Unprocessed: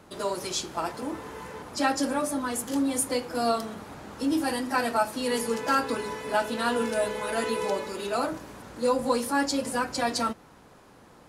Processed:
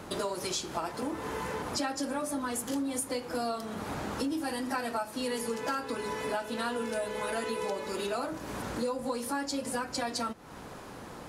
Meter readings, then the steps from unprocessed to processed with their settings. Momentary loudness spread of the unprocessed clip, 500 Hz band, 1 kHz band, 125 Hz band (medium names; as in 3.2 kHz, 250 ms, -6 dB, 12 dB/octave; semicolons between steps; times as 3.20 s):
10 LU, -5.5 dB, -6.0 dB, -0.5 dB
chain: compression 6:1, threshold -40 dBFS, peak gain reduction 19.5 dB; trim +8.5 dB